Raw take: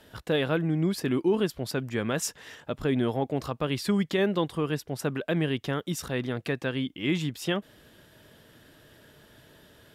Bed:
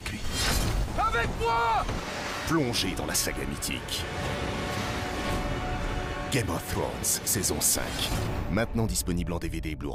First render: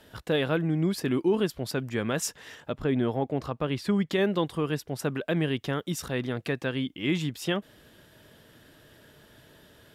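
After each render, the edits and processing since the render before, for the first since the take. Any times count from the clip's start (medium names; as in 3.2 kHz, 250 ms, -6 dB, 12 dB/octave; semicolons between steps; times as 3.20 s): 2.73–4.11 s: treble shelf 4.1 kHz -9.5 dB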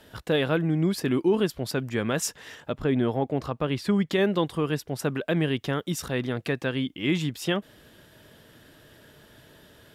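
trim +2 dB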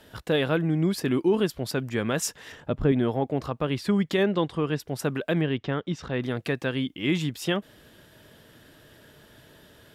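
2.52–2.92 s: tilt EQ -2 dB/octave; 4.23–4.80 s: distance through air 73 m; 5.41–6.22 s: distance through air 180 m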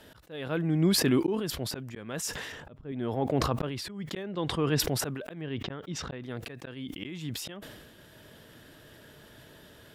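slow attack 597 ms; decay stretcher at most 36 dB/s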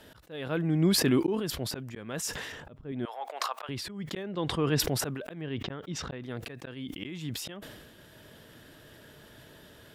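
3.05–3.69 s: high-pass 750 Hz 24 dB/octave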